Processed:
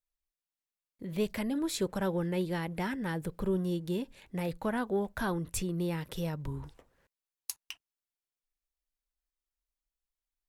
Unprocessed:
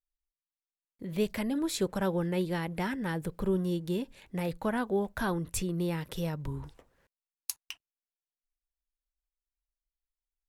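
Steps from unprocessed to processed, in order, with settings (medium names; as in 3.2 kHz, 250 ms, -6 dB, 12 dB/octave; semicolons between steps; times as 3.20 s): saturation -17 dBFS, distortion -28 dB; trim -1 dB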